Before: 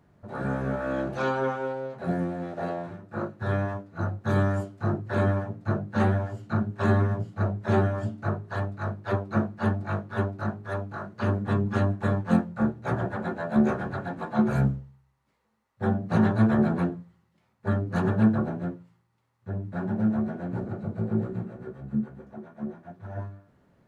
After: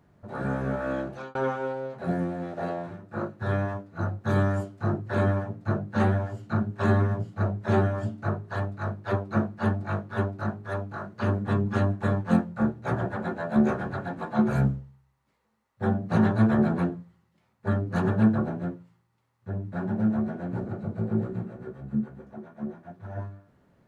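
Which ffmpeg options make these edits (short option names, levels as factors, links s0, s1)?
-filter_complex "[0:a]asplit=2[s0][s1];[s0]atrim=end=1.35,asetpts=PTS-STARTPTS,afade=t=out:st=0.91:d=0.44[s2];[s1]atrim=start=1.35,asetpts=PTS-STARTPTS,afade=t=in:d=0.004:c=hsin[s3];[s2][s3]concat=n=2:v=0:a=1"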